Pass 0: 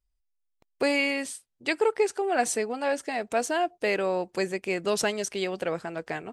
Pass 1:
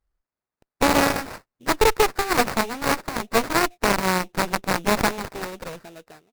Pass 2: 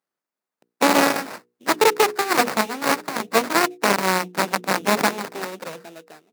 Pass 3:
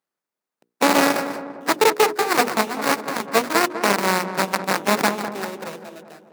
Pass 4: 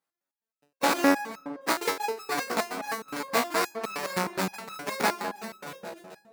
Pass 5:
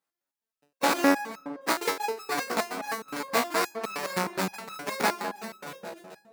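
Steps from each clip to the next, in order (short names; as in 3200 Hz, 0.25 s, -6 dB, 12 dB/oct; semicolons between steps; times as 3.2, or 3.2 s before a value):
ending faded out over 1.23 s; sample-rate reducer 3200 Hz, jitter 20%; added harmonics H 4 -8 dB, 7 -11 dB, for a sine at -12.5 dBFS; gain +3 dB
HPF 180 Hz 24 dB/oct; notches 60/120/180/240/300/360/420/480 Hz; gain +2 dB
darkening echo 0.199 s, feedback 56%, low-pass 1300 Hz, level -9 dB
in parallel at +1 dB: compressor, threshold -26 dBFS, peak gain reduction 14.5 dB; on the sum: stepped resonator 9.6 Hz 60–1300 Hz
bell 82 Hz -8 dB 0.54 oct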